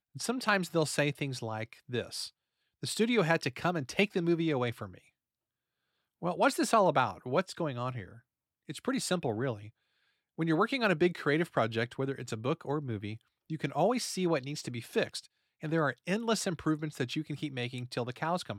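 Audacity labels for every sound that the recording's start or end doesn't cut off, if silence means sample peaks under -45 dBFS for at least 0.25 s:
2.830000	4.980000	sound
6.220000	8.170000	sound
8.690000	9.690000	sound
10.390000	13.160000	sound
13.500000	15.250000	sound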